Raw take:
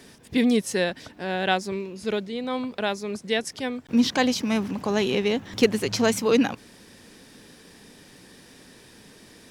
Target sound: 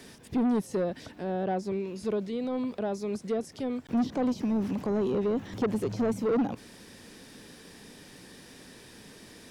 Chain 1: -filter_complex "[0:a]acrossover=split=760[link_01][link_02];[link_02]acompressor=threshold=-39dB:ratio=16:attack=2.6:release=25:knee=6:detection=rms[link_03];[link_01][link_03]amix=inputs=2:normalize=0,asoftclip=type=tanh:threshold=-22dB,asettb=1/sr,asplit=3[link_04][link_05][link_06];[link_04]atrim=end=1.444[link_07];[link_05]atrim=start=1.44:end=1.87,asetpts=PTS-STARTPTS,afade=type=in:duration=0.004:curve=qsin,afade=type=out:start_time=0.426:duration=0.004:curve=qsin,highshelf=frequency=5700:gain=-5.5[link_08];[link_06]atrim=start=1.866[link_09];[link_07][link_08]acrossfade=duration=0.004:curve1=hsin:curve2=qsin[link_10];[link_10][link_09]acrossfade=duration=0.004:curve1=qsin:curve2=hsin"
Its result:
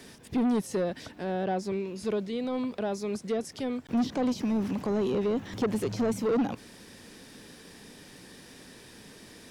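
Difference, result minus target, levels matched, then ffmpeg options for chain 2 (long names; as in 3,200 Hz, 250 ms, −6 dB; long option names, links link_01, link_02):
downward compressor: peak gain reduction −5.5 dB
-filter_complex "[0:a]acrossover=split=760[link_01][link_02];[link_02]acompressor=threshold=-45dB:ratio=16:attack=2.6:release=25:knee=6:detection=rms[link_03];[link_01][link_03]amix=inputs=2:normalize=0,asoftclip=type=tanh:threshold=-22dB,asettb=1/sr,asplit=3[link_04][link_05][link_06];[link_04]atrim=end=1.444[link_07];[link_05]atrim=start=1.44:end=1.87,asetpts=PTS-STARTPTS,afade=type=in:duration=0.004:curve=qsin,afade=type=out:start_time=0.426:duration=0.004:curve=qsin,highshelf=frequency=5700:gain=-5.5[link_08];[link_06]atrim=start=1.866[link_09];[link_07][link_08]acrossfade=duration=0.004:curve1=hsin:curve2=qsin[link_10];[link_10][link_09]acrossfade=duration=0.004:curve1=qsin:curve2=hsin"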